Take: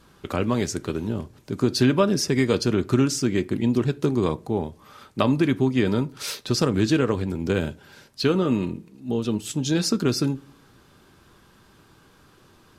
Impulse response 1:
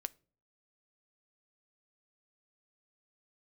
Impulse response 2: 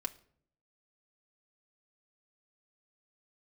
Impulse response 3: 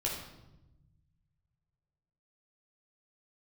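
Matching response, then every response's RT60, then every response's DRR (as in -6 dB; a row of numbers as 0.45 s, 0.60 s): 1; 0.45 s, no single decay rate, 0.95 s; 14.5 dB, 3.5 dB, -3.5 dB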